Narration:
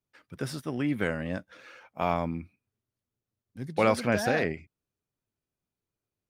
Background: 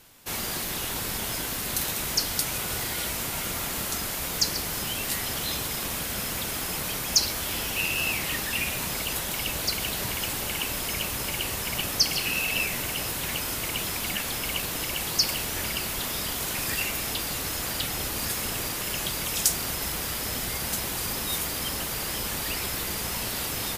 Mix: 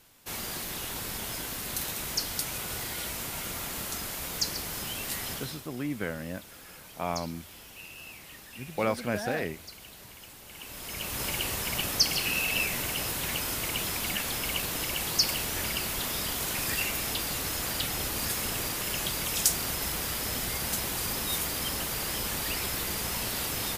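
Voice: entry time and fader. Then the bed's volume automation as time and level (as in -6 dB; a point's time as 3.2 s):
5.00 s, -4.5 dB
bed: 5.32 s -5 dB
5.68 s -18.5 dB
10.43 s -18.5 dB
11.23 s -1.5 dB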